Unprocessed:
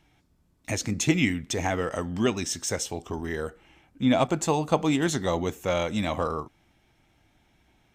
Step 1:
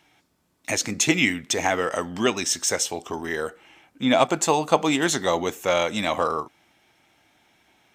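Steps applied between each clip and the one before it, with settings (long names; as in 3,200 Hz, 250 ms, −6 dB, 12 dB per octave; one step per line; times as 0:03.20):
high-pass filter 510 Hz 6 dB per octave
level +7 dB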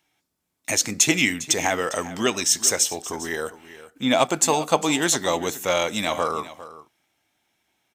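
noise gate −55 dBFS, range −11 dB
high-shelf EQ 5,600 Hz +10 dB
single-tap delay 403 ms −16 dB
level −1 dB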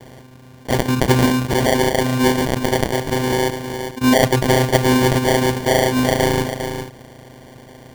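channel vocoder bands 8, saw 127 Hz
decimation without filtering 34×
envelope flattener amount 50%
level +3.5 dB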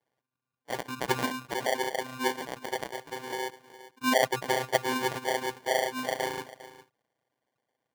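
spectral dynamics exaggerated over time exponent 2
high-pass filter 530 Hz 6 dB per octave
parametric band 1,100 Hz +4.5 dB 2.6 octaves
level −7.5 dB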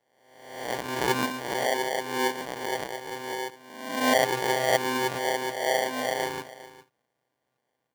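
peak hold with a rise ahead of every peak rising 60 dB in 0.88 s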